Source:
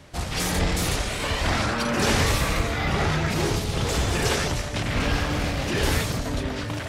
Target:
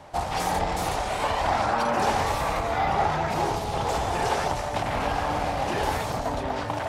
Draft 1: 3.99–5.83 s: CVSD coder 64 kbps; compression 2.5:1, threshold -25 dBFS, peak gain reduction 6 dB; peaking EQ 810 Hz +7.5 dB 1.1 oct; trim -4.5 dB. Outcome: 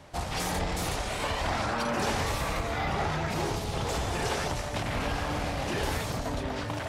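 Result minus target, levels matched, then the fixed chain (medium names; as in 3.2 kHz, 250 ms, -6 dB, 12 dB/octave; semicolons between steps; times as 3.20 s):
1 kHz band -4.0 dB
3.99–5.83 s: CVSD coder 64 kbps; compression 2.5:1, threshold -25 dBFS, peak gain reduction 6 dB; peaking EQ 810 Hz +17.5 dB 1.1 oct; trim -4.5 dB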